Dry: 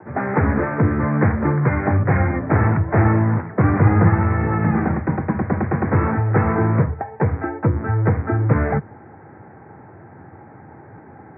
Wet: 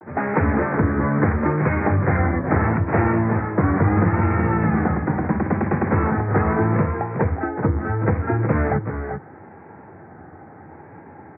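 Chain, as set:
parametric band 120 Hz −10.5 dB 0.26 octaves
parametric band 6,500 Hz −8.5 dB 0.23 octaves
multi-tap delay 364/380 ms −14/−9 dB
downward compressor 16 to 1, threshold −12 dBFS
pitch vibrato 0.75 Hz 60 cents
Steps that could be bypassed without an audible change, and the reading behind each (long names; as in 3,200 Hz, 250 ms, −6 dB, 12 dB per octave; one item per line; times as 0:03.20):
parametric band 6,500 Hz: nothing at its input above 2,000 Hz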